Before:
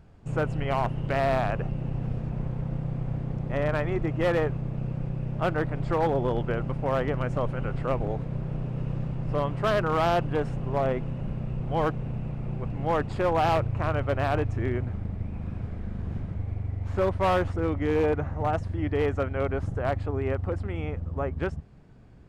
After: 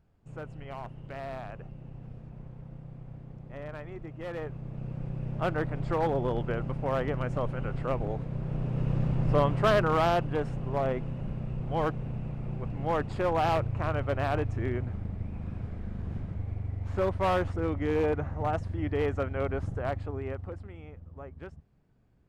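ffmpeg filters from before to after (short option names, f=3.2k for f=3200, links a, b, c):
-af "volume=4dB,afade=t=in:st=4.26:d=1.04:silence=0.281838,afade=t=in:st=8.34:d=0.86:silence=0.446684,afade=t=out:st=9.2:d=1.05:silence=0.446684,afade=t=out:st=19.64:d=1.15:silence=0.266073"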